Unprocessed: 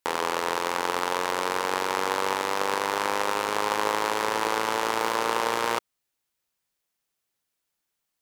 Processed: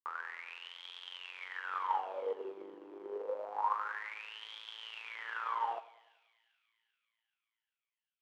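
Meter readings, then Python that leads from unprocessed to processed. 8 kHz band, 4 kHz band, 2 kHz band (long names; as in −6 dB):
below −30 dB, −15.0 dB, −14.0 dB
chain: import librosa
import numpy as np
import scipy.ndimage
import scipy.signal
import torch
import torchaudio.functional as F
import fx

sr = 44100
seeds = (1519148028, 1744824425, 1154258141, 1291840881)

p1 = fx.wah_lfo(x, sr, hz=0.27, low_hz=330.0, high_hz=3300.0, q=15.0)
p2 = p1 + fx.echo_split(p1, sr, split_hz=2200.0, low_ms=97, high_ms=393, feedback_pct=52, wet_db=-12, dry=0)
p3 = fx.upward_expand(p2, sr, threshold_db=-52.0, expansion=1.5)
y = p3 * 10.0 ** (4.5 / 20.0)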